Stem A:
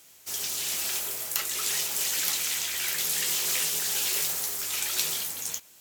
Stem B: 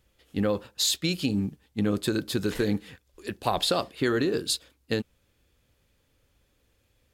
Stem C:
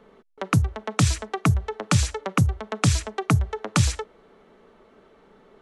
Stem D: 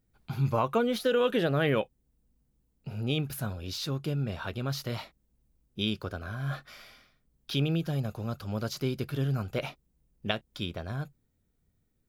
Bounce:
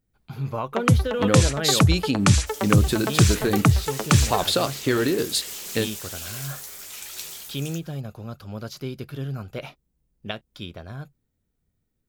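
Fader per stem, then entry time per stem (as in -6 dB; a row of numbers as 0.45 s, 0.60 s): -8.0 dB, +3.0 dB, +2.5 dB, -1.5 dB; 2.20 s, 0.85 s, 0.35 s, 0.00 s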